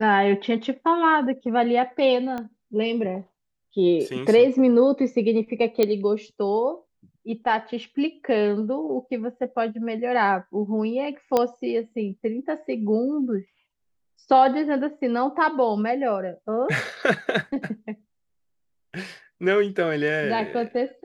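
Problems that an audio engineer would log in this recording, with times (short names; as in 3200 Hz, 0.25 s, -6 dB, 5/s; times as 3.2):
2.38 pop -19 dBFS
5.83 pop -8 dBFS
11.37 pop -8 dBFS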